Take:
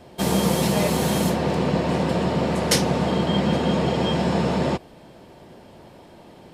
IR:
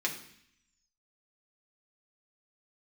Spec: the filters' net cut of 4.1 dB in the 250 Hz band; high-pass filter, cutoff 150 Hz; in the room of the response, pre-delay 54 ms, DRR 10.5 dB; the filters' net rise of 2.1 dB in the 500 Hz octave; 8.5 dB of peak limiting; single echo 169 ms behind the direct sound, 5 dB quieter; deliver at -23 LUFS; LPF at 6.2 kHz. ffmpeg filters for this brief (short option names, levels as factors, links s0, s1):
-filter_complex "[0:a]highpass=150,lowpass=6200,equalizer=f=250:t=o:g=-5.5,equalizer=f=500:t=o:g=4,alimiter=limit=0.178:level=0:latency=1,aecho=1:1:169:0.562,asplit=2[s0][s1];[1:a]atrim=start_sample=2205,adelay=54[s2];[s1][s2]afir=irnorm=-1:irlink=0,volume=0.15[s3];[s0][s3]amix=inputs=2:normalize=0,volume=1.06"